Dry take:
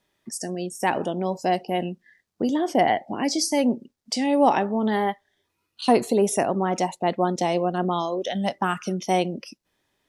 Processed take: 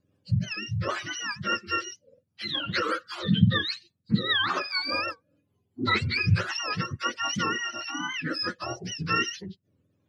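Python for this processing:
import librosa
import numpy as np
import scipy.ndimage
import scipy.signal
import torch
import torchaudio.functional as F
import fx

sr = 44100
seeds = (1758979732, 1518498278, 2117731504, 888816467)

y = fx.octave_mirror(x, sr, pivot_hz=1000.0)
y = fx.rotary_switch(y, sr, hz=5.0, then_hz=1.0, switch_at_s=6.62)
y = fx.dmg_crackle(y, sr, seeds[0], per_s=fx.line((4.69, 39.0), (5.11, 14.0)), level_db=-38.0, at=(4.69, 5.11), fade=0.02)
y = fx.record_warp(y, sr, rpm=78.0, depth_cents=160.0)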